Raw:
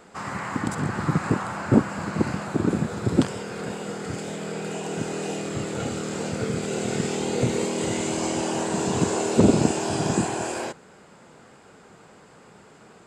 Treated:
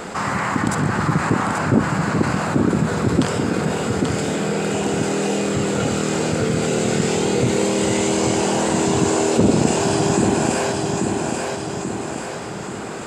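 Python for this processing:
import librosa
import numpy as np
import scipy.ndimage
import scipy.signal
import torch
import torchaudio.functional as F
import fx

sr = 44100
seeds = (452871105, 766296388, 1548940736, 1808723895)

p1 = x + fx.echo_feedback(x, sr, ms=836, feedback_pct=34, wet_db=-7.5, dry=0)
y = fx.env_flatten(p1, sr, amount_pct=50)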